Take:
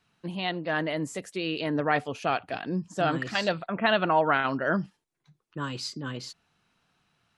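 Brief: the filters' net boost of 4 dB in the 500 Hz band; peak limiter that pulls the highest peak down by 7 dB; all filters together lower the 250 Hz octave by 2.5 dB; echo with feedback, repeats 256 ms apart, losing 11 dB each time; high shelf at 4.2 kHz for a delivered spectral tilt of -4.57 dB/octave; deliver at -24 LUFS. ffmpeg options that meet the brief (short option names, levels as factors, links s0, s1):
-af "equalizer=f=250:t=o:g=-6,equalizer=f=500:t=o:g=6.5,highshelf=f=4200:g=3,alimiter=limit=0.2:level=0:latency=1,aecho=1:1:256|512|768:0.282|0.0789|0.0221,volume=1.58"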